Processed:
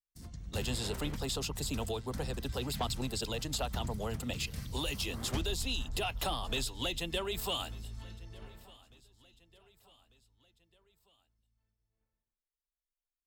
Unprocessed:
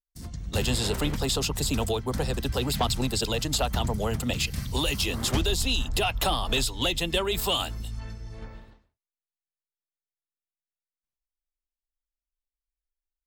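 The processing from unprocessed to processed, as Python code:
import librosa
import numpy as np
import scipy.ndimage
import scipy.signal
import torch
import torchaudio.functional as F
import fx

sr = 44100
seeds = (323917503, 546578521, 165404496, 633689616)

y = fx.echo_feedback(x, sr, ms=1196, feedback_pct=51, wet_db=-23.5)
y = F.gain(torch.from_numpy(y), -9.0).numpy()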